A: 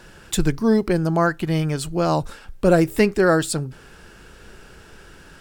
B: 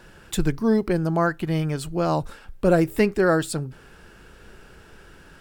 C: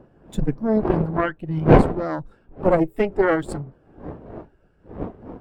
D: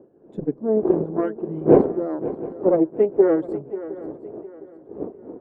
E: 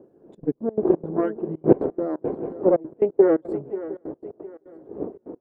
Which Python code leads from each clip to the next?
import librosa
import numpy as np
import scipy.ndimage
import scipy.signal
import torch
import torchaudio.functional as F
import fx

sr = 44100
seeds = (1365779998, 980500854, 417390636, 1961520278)

y1 = fx.peak_eq(x, sr, hz=6400.0, db=-4.0, octaves=1.7)
y1 = y1 * librosa.db_to_amplitude(-2.5)
y2 = fx.dmg_wind(y1, sr, seeds[0], corner_hz=520.0, level_db=-27.0)
y2 = fx.cheby_harmonics(y2, sr, harmonics=(6,), levels_db=(-12,), full_scale_db=-2.0)
y2 = fx.spectral_expand(y2, sr, expansion=1.5)
y2 = y2 * librosa.db_to_amplitude(1.0)
y3 = fx.bandpass_q(y2, sr, hz=390.0, q=2.2)
y3 = fx.echo_swing(y3, sr, ms=711, ratio=3, feedback_pct=32, wet_db=-14.5)
y3 = y3 * librosa.db_to_amplitude(4.5)
y4 = fx.step_gate(y3, sr, bpm=174, pattern='xxxx.x.x.xx.xx', floor_db=-24.0, edge_ms=4.5)